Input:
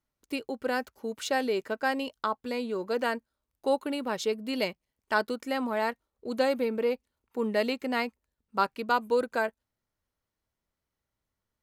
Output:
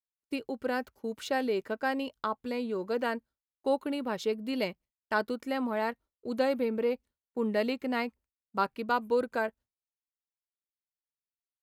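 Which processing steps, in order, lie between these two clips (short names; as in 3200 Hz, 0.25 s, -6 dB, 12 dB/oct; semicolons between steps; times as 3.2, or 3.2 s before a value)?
low shelf 300 Hz +5 dB; expander -45 dBFS; dynamic EQ 7300 Hz, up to -5 dB, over -53 dBFS, Q 0.98; gain -3 dB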